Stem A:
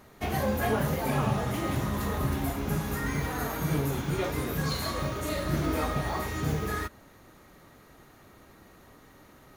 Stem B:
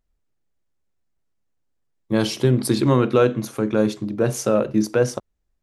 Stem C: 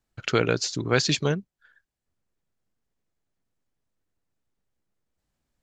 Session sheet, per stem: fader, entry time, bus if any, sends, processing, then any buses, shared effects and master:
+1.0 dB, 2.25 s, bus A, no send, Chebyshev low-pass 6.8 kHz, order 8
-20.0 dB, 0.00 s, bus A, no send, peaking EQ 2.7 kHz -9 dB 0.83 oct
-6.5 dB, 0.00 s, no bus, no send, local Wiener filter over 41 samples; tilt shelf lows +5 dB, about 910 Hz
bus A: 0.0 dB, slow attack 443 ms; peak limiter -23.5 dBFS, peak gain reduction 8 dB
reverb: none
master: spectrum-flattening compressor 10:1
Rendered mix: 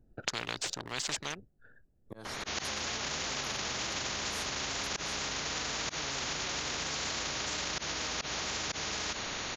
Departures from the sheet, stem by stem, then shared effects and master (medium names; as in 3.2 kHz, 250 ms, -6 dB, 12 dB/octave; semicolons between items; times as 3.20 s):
stem A +1.0 dB -> +9.0 dB; stem B -20.0 dB -> -27.5 dB